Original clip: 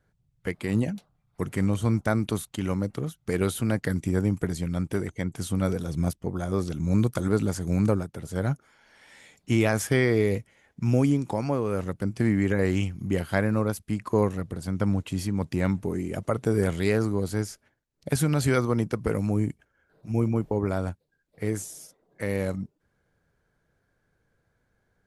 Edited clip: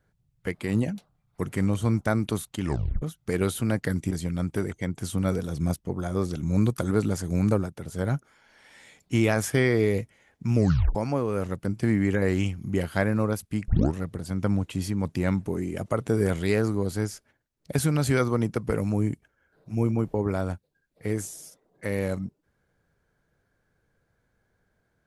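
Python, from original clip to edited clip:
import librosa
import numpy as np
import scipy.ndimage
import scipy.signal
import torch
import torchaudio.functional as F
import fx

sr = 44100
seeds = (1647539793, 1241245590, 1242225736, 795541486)

y = fx.edit(x, sr, fx.tape_stop(start_s=2.63, length_s=0.39),
    fx.cut(start_s=4.11, length_s=0.37),
    fx.tape_stop(start_s=10.92, length_s=0.4),
    fx.tape_start(start_s=14.05, length_s=0.27), tone=tone)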